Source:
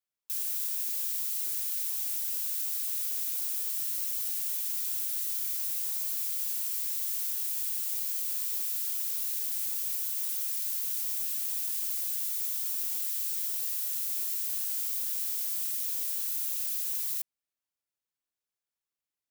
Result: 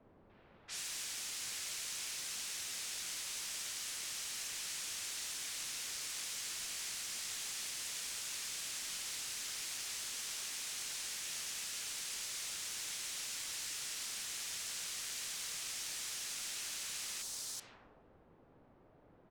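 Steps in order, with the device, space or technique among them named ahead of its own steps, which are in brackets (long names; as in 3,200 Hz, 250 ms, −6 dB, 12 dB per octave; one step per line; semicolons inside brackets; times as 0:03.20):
high-pass filter 1,000 Hz
parametric band 450 Hz −8.5 dB 2.2 octaves
multiband delay without the direct sound lows, highs 380 ms, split 3,900 Hz
cassette deck with a dynamic noise filter (white noise bed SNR 26 dB; low-pass that shuts in the quiet parts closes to 510 Hz, open at −29 dBFS)
high-frequency loss of the air 110 metres
level +9.5 dB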